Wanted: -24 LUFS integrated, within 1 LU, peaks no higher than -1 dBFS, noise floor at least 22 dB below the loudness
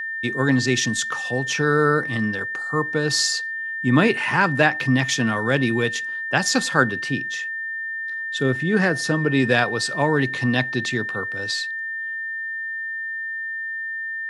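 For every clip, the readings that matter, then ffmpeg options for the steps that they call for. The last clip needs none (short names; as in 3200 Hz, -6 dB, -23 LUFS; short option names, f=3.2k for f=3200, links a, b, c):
steady tone 1800 Hz; tone level -26 dBFS; loudness -21.5 LUFS; peak -1.5 dBFS; loudness target -24.0 LUFS
-> -af "bandreject=f=1.8k:w=30"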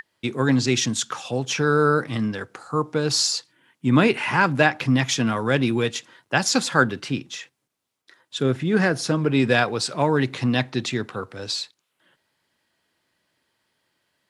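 steady tone none; loudness -22.0 LUFS; peak -2.5 dBFS; loudness target -24.0 LUFS
-> -af "volume=-2dB"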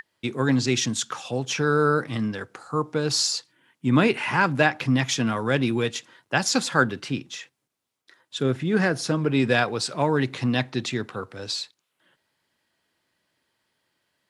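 loudness -24.0 LUFS; peak -4.5 dBFS; noise floor -78 dBFS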